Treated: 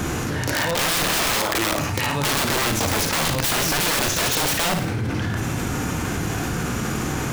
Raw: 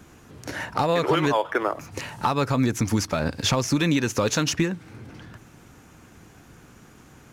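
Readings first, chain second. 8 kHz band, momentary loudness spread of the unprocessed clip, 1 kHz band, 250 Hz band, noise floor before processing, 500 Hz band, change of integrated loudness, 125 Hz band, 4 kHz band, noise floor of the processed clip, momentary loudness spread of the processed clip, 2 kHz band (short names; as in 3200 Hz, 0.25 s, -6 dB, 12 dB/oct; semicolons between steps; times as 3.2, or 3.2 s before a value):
+9.5 dB, 14 LU, +2.5 dB, 0.0 dB, -51 dBFS, 0.0 dB, +2.5 dB, +3.0 dB, +8.0 dB, -26 dBFS, 6 LU, +8.0 dB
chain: harmonic-percussive split harmonic +7 dB; dynamic EQ 3500 Hz, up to +4 dB, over -36 dBFS, Q 1.1; reverse; upward compressor, threshold -25 dBFS; reverse; pre-echo 0.207 s -14 dB; wrapped overs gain 18 dB; on a send: flutter echo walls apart 9.5 m, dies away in 0.37 s; on the sum: fast leveller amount 70%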